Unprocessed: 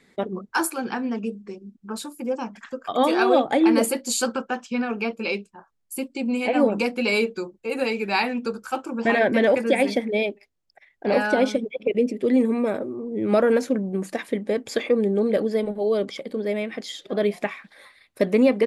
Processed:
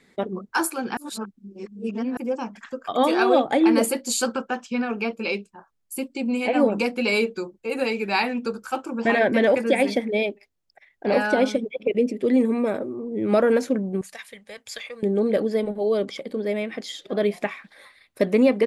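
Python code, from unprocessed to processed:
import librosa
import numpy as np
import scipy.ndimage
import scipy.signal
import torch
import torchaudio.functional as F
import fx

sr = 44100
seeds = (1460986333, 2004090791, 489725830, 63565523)

y = fx.tone_stack(x, sr, knobs='10-0-10', at=(14.01, 15.03))
y = fx.edit(y, sr, fx.reverse_span(start_s=0.97, length_s=1.2), tone=tone)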